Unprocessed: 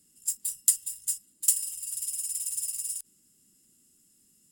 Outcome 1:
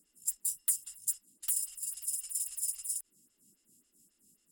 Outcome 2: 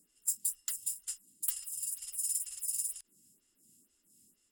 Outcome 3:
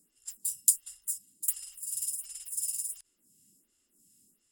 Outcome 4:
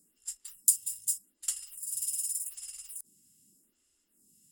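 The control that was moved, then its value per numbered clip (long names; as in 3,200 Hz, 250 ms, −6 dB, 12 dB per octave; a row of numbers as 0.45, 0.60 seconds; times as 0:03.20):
phaser with staggered stages, speed: 3.7, 2.1, 1.4, 0.84 Hertz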